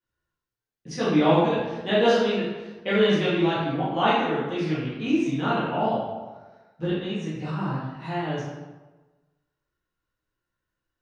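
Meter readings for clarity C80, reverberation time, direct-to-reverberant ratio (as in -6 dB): 2.0 dB, 1.2 s, -10.5 dB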